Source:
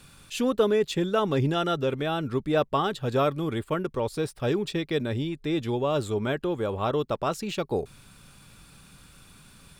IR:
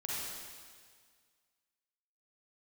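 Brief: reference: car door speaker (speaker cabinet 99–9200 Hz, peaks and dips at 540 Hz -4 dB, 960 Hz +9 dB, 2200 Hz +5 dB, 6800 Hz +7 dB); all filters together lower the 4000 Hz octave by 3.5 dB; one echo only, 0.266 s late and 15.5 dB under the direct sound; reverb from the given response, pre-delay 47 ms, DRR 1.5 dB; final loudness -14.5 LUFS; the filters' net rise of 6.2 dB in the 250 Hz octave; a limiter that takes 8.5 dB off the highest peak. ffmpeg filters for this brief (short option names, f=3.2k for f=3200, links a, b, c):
-filter_complex "[0:a]equalizer=f=250:t=o:g=8.5,equalizer=f=4k:t=o:g=-5.5,alimiter=limit=-15.5dB:level=0:latency=1,aecho=1:1:266:0.168,asplit=2[a][b];[1:a]atrim=start_sample=2205,adelay=47[c];[b][c]afir=irnorm=-1:irlink=0,volume=-4.5dB[d];[a][d]amix=inputs=2:normalize=0,highpass=99,equalizer=f=540:t=q:w=4:g=-4,equalizer=f=960:t=q:w=4:g=9,equalizer=f=2.2k:t=q:w=4:g=5,equalizer=f=6.8k:t=q:w=4:g=7,lowpass=f=9.2k:w=0.5412,lowpass=f=9.2k:w=1.3066,volume=9dB"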